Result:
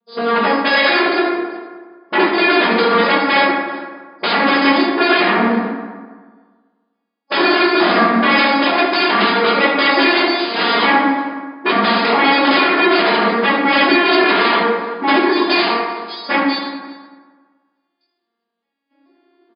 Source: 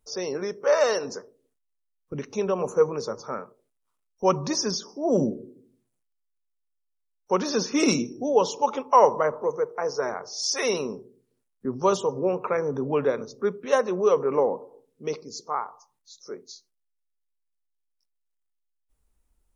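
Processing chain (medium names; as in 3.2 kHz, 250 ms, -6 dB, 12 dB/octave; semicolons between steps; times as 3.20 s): vocoder on a broken chord minor triad, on A#3, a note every 433 ms; level rider gain up to 16.5 dB; waveshaping leveller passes 2; compression 6:1, threshold -12 dBFS, peak gain reduction 8.5 dB; sine folder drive 18 dB, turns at -5 dBFS; brick-wall FIR band-pass 180–5100 Hz; delay 379 ms -23 dB; reverberation RT60 1.5 s, pre-delay 4 ms, DRR -6.5 dB; trim -11 dB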